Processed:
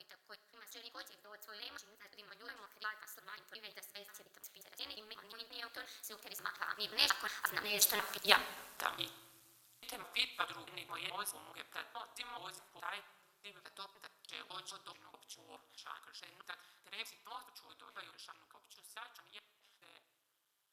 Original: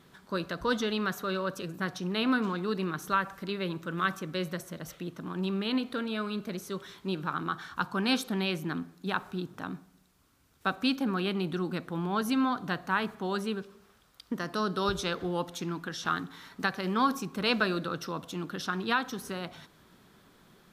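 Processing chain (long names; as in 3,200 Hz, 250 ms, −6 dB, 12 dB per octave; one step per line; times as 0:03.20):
slices reordered back to front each 195 ms, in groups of 3
source passing by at 0:08.39, 31 m/s, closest 11 metres
high-pass filter 400 Hz 24 dB per octave
spectral tilt +4 dB per octave
amplitude modulation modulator 210 Hz, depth 95%
rectangular room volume 870 cubic metres, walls mixed, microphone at 0.38 metres
level +9 dB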